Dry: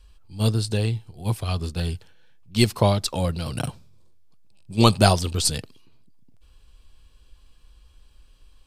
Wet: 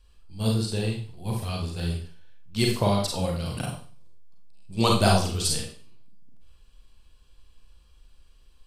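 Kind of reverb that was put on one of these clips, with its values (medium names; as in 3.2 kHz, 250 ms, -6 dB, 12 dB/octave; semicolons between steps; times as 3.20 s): Schroeder reverb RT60 0.42 s, combs from 32 ms, DRR -1 dB; trim -6 dB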